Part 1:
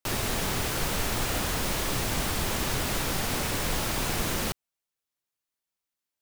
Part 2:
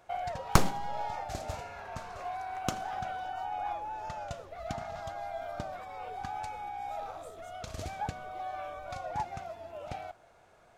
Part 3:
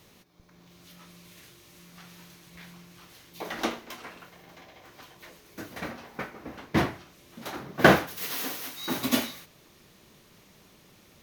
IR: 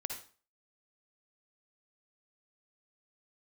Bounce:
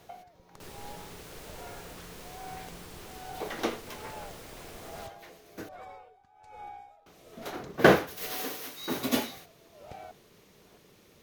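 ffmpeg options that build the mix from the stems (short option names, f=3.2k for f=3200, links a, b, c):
-filter_complex "[0:a]adelay=550,volume=-19dB[a];[1:a]acompressor=threshold=-40dB:ratio=4,aeval=exprs='val(0)*pow(10,-21*(0.5-0.5*cos(2*PI*1.2*n/s))/20)':c=same,volume=-1dB[b];[2:a]volume=-3.5dB,asplit=3[c][d][e];[c]atrim=end=5.69,asetpts=PTS-STARTPTS,afade=t=out:st=5.686:d=0.004:c=hsin[f];[d]atrim=start=5.69:end=7.06,asetpts=PTS-STARTPTS,volume=0[g];[e]atrim=start=7.06,asetpts=PTS-STARTPTS,afade=t=in:d=0.004:c=hsin[h];[f][g][h]concat=n=3:v=0:a=1[i];[a][b][i]amix=inputs=3:normalize=0,equalizer=f=440:t=o:w=0.56:g=7.5"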